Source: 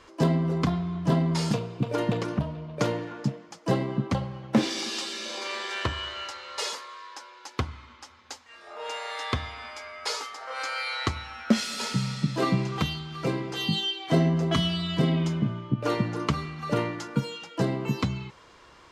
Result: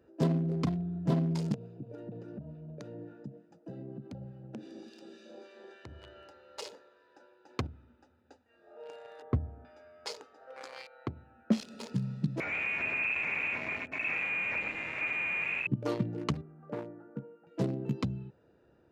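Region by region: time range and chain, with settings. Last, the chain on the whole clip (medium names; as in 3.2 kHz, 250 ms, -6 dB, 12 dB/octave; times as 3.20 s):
1.54–6.02 s: harmonic tremolo 3.4 Hz, depth 50%, crossover 1.2 kHz + compression 8:1, threshold -33 dBFS + treble shelf 4.1 kHz +6 dB
6.77–7.67 s: high-pass 56 Hz + transient shaper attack +1 dB, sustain +9 dB
9.22–9.65 s: low-pass 1.1 kHz + tilt EQ -2.5 dB/octave
10.87–11.52 s: high-pass 94 Hz + tape spacing loss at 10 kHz 39 dB
12.40–15.67 s: Schmitt trigger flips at -33 dBFS + delay 117 ms -6 dB + frequency inversion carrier 2.6 kHz
16.41–17.47 s: low-pass 1.3 kHz 24 dB/octave + tilt EQ +4 dB/octave
whole clip: local Wiener filter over 41 samples; high-pass 89 Hz; dynamic bell 1.6 kHz, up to -4 dB, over -44 dBFS, Q 1; trim -4 dB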